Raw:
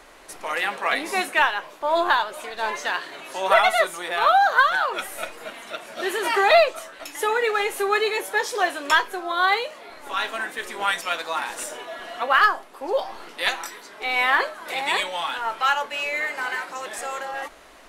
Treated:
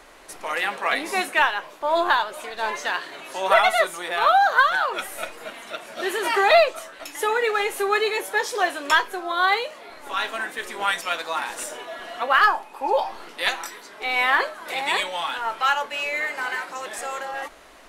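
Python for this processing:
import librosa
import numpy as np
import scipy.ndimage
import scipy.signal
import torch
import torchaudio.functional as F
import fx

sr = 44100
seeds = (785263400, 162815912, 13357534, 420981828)

y = fx.small_body(x, sr, hz=(870.0, 2500.0), ring_ms=45, db=15, at=(12.47, 13.09))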